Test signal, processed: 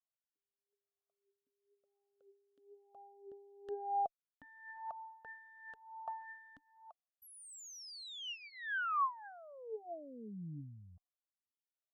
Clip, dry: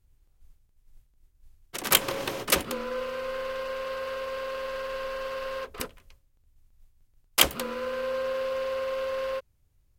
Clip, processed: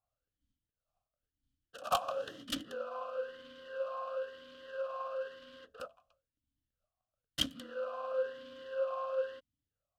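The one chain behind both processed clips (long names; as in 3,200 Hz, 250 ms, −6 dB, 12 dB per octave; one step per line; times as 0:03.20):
harmonic generator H 6 −9 dB, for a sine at −1.5 dBFS
phaser with its sweep stopped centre 910 Hz, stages 4
formant filter swept between two vowels a-i 1 Hz
level +7 dB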